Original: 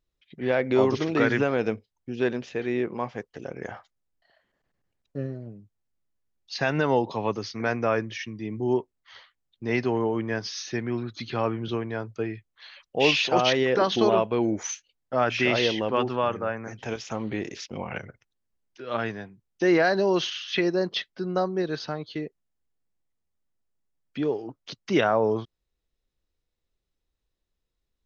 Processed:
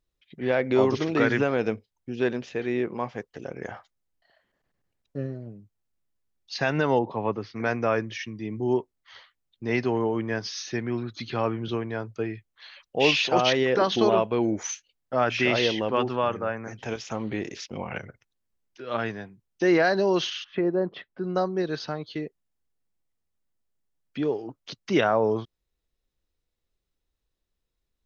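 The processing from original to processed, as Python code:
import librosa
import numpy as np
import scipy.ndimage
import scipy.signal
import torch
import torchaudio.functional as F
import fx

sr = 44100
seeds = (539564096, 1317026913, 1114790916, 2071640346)

y = fx.lowpass(x, sr, hz=fx.line((6.98, 1600.0), (7.55, 2600.0)), slope=12, at=(6.98, 7.55), fade=0.02)
y = fx.lowpass(y, sr, hz=fx.line((20.43, 1000.0), (21.23, 1700.0)), slope=12, at=(20.43, 21.23), fade=0.02)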